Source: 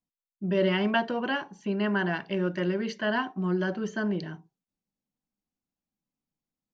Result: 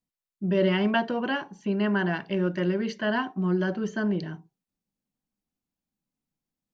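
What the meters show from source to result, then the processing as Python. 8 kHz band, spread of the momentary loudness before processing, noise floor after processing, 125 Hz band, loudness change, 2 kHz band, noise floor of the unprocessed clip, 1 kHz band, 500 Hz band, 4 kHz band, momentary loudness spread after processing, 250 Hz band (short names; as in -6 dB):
n/a, 7 LU, under -85 dBFS, +3.0 dB, +1.5 dB, 0.0 dB, under -85 dBFS, +0.5 dB, +1.5 dB, 0.0 dB, 7 LU, +2.5 dB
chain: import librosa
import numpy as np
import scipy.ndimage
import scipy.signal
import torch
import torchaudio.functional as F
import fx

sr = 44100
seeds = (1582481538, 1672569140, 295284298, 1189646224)

y = fx.low_shelf(x, sr, hz=370.0, db=3.5)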